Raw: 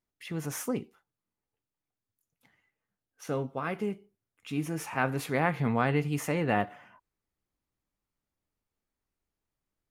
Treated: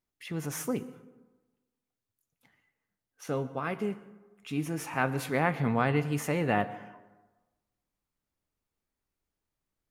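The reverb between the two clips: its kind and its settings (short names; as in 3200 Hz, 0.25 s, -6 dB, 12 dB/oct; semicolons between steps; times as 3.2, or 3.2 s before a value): plate-style reverb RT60 1.2 s, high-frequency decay 0.5×, pre-delay 0.1 s, DRR 16.5 dB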